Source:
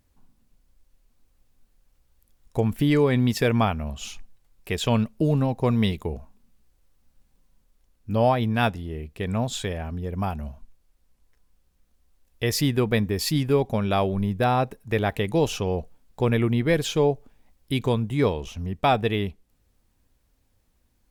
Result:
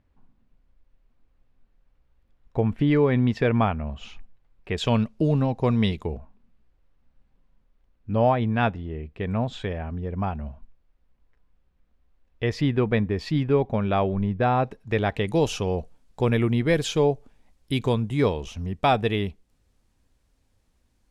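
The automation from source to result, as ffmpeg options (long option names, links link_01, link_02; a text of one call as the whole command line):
ffmpeg -i in.wav -af "asetnsamples=nb_out_samples=441:pad=0,asendcmd='4.77 lowpass f 5700;6.15 lowpass f 2600;14.64 lowpass f 5100;15.27 lowpass f 9600',lowpass=2500" out.wav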